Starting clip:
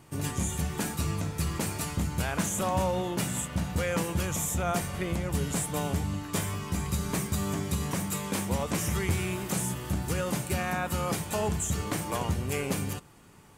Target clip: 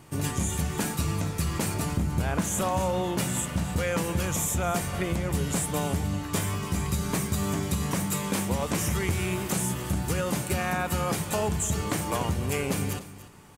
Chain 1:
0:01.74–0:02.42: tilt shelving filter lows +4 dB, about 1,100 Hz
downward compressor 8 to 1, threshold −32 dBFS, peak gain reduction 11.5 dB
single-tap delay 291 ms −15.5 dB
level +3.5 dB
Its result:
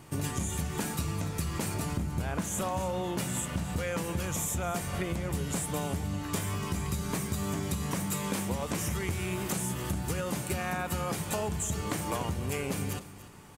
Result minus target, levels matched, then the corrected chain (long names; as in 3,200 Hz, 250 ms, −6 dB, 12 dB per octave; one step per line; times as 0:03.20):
downward compressor: peak gain reduction +5.5 dB
0:01.74–0:02.42: tilt shelving filter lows +4 dB, about 1,100 Hz
downward compressor 8 to 1, threshold −25.5 dBFS, peak gain reduction 6 dB
single-tap delay 291 ms −15.5 dB
level +3.5 dB